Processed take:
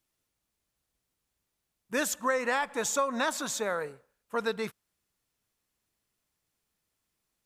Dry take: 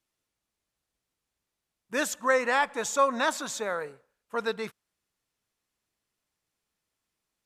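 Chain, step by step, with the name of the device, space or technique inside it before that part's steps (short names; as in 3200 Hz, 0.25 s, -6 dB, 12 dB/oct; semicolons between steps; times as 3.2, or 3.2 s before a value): ASMR close-microphone chain (low shelf 220 Hz +4.5 dB; compressor, threshold -24 dBFS, peak gain reduction 7.5 dB; high shelf 11000 Hz +8 dB)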